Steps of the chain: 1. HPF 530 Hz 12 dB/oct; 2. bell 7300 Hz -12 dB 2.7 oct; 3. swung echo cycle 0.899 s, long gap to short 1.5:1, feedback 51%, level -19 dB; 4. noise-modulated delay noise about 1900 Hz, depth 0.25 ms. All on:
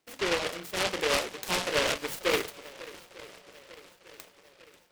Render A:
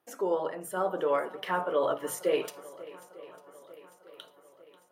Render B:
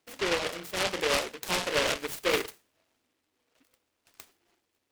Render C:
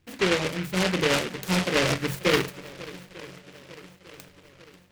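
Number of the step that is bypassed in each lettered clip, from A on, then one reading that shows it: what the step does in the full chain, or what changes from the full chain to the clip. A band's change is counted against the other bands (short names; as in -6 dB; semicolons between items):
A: 4, 4 kHz band -11.5 dB; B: 3, momentary loudness spread change -15 LU; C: 1, loudness change +4.5 LU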